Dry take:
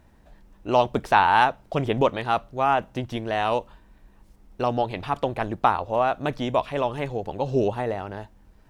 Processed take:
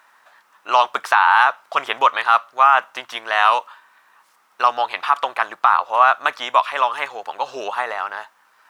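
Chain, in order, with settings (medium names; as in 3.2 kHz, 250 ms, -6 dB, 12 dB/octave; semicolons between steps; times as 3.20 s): resonant high-pass 1.2 kHz, resonance Q 2.8; loudness maximiser +9.5 dB; trim -1 dB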